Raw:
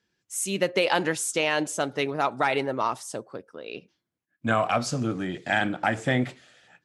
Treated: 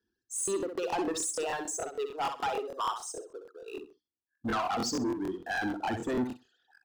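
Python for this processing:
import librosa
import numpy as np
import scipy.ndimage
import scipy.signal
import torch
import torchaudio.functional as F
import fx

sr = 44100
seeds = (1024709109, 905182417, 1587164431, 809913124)

y = fx.envelope_sharpen(x, sr, power=2.0)
y = fx.highpass(y, sr, hz=460.0, slope=24, at=(1.46, 3.74))
y = fx.dereverb_blind(y, sr, rt60_s=1.2)
y = scipy.signal.sosfilt(scipy.signal.butter(2, 7600.0, 'lowpass', fs=sr, output='sos'), y)
y = fx.leveller(y, sr, passes=1)
y = fx.fixed_phaser(y, sr, hz=580.0, stages=6)
y = 10.0 ** (-27.5 / 20.0) * np.tanh(y / 10.0 ** (-27.5 / 20.0))
y = fx.echo_feedback(y, sr, ms=64, feedback_pct=23, wet_db=-7.5)
y = fx.buffer_crackle(y, sr, first_s=0.43, period_s=0.15, block=1024, kind='repeat')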